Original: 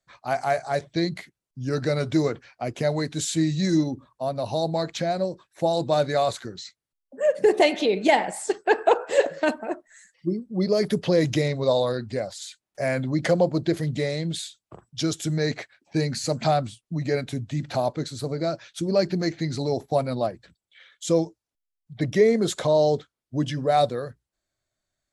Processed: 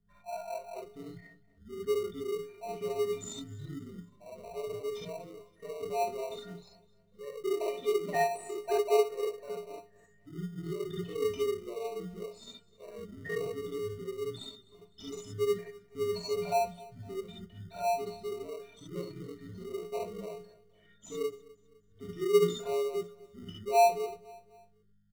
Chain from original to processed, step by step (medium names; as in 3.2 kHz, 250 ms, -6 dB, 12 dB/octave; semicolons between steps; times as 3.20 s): resonances exaggerated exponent 3; hum 50 Hz, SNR 24 dB; inharmonic resonator 220 Hz, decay 0.35 s, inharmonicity 0.03; gated-style reverb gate 90 ms rising, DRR -4 dB; in parallel at -7 dB: sample-and-hold 26×; on the sum: frequency shift -48 Hz; on a send: feedback delay 254 ms, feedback 42%, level -21.5 dB; on the sum: trim -4 dB